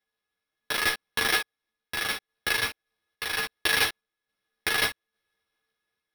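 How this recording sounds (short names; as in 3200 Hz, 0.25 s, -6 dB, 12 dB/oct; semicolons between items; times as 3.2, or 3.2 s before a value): a buzz of ramps at a fixed pitch in blocks of 8 samples; random-step tremolo; aliases and images of a low sample rate 7200 Hz, jitter 0%; a shimmering, thickened sound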